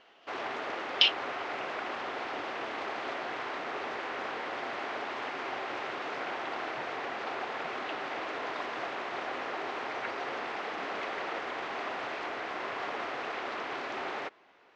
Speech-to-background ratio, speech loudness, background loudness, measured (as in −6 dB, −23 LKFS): 10.5 dB, −25.5 LKFS, −36.0 LKFS